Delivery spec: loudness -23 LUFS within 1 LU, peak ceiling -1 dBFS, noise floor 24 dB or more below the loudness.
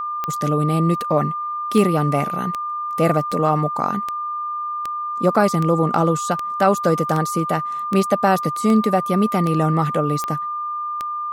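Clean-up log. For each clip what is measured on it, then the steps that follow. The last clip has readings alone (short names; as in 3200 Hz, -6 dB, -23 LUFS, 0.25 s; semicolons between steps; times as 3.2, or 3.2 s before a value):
clicks 15; steady tone 1200 Hz; tone level -23 dBFS; loudness -20.0 LUFS; peak -3.5 dBFS; loudness target -23.0 LUFS
-> de-click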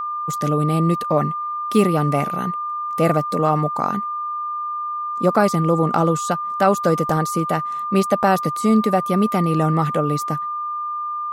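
clicks 0; steady tone 1200 Hz; tone level -23 dBFS
-> notch 1200 Hz, Q 30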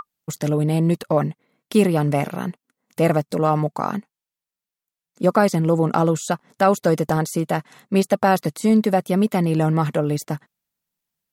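steady tone none; loudness -20.5 LUFS; peak -4.5 dBFS; loudness target -23.0 LUFS
-> gain -2.5 dB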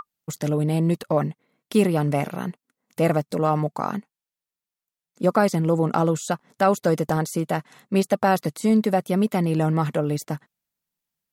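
loudness -23.0 LUFS; peak -7.0 dBFS; noise floor -91 dBFS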